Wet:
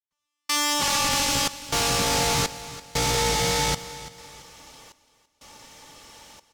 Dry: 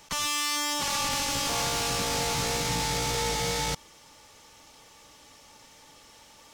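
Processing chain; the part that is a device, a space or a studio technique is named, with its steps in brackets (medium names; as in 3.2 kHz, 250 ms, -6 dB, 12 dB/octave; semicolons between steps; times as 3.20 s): trance gate with a delay (trance gate "..xxxx.xxx" 61 bpm -60 dB; feedback delay 337 ms, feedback 36%, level -15.5 dB); trim +5.5 dB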